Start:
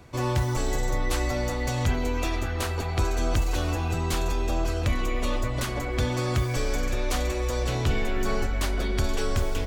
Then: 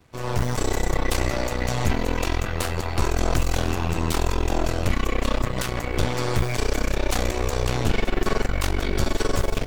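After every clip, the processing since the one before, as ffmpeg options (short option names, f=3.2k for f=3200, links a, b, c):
-af "aeval=exprs='0.178*(cos(1*acos(clip(val(0)/0.178,-1,1)))-cos(1*PI/2))+0.0708*(cos(4*acos(clip(val(0)/0.178,-1,1)))-cos(4*PI/2))':c=same,dynaudnorm=f=210:g=3:m=9dB,acrusher=bits=7:mix=0:aa=0.5,volume=-8dB"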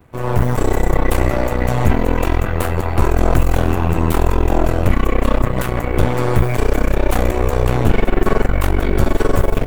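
-af "equalizer=f=5.1k:t=o:w=1.7:g=-15,volume=8.5dB"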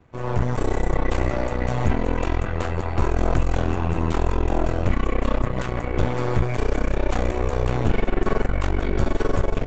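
-af "aresample=16000,aresample=44100,volume=-6.5dB"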